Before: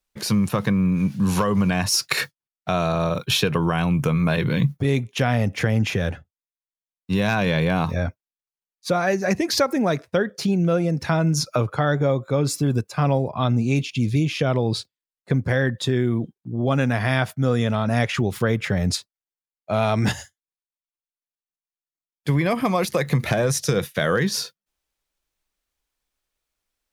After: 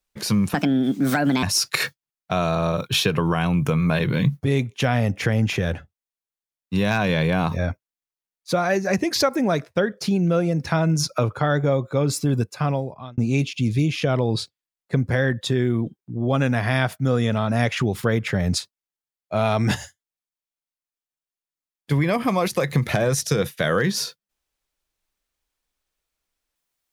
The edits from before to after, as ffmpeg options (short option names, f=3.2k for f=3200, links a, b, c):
-filter_complex "[0:a]asplit=4[a][b][c][d];[a]atrim=end=0.544[e];[b]atrim=start=0.54:end=1.8,asetpts=PTS-STARTPTS,asetrate=62622,aresample=44100[f];[c]atrim=start=1.796:end=13.55,asetpts=PTS-STARTPTS,afade=t=out:st=11.094:d=0.66[g];[d]atrim=start=13.55,asetpts=PTS-STARTPTS,afade=t=in:d=0.004:c=hsin[h];[e][f]acrossfade=d=0.004:c1=hsin:c2=hsin[i];[g][h]concat=n=2:v=0:a=1[j];[i][j]acrossfade=d=0.004:c1=hsin:c2=hsin"